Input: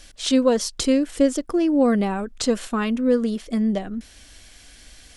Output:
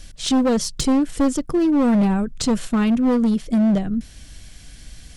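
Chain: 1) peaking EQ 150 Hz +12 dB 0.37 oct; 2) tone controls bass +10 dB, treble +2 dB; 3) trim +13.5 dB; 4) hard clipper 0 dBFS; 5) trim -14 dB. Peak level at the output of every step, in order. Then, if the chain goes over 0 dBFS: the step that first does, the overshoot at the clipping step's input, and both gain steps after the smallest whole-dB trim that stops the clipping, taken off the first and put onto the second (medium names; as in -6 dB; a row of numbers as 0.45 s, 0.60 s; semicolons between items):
-6.5 dBFS, -4.0 dBFS, +9.5 dBFS, 0.0 dBFS, -14.0 dBFS; step 3, 9.5 dB; step 3 +3.5 dB, step 5 -4 dB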